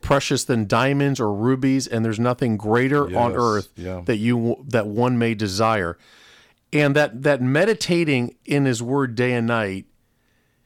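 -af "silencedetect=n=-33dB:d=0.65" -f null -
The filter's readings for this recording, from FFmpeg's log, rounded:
silence_start: 5.93
silence_end: 6.73 | silence_duration: 0.80
silence_start: 9.80
silence_end: 10.65 | silence_duration: 0.85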